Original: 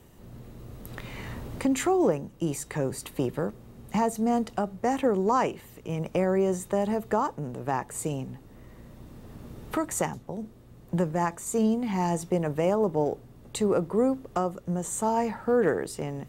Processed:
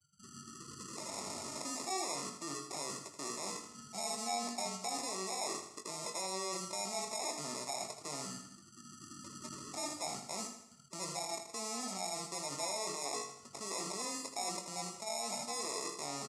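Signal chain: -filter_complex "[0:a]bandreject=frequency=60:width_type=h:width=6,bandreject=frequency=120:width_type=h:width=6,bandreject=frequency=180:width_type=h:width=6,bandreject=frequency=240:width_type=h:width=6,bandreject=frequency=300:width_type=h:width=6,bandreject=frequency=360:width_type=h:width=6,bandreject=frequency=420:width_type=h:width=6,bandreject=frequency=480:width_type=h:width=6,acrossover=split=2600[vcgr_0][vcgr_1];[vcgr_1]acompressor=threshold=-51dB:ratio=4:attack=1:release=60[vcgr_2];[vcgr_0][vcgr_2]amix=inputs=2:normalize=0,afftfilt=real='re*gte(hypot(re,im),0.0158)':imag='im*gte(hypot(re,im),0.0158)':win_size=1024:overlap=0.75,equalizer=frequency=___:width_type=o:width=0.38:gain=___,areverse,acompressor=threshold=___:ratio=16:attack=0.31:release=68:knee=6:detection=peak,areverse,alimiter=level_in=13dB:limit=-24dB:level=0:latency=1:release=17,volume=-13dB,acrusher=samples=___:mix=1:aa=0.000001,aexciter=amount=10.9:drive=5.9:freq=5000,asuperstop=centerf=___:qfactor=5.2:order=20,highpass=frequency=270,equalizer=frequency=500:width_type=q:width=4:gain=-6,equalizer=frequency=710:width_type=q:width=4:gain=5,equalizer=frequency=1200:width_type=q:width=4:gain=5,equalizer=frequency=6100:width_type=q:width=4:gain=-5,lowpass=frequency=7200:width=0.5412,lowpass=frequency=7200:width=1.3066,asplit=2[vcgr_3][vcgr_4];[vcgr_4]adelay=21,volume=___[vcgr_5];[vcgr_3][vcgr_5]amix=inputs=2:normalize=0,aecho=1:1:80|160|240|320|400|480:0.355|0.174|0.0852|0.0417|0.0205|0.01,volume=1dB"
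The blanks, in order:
650, 10, -32dB, 29, 1600, -8dB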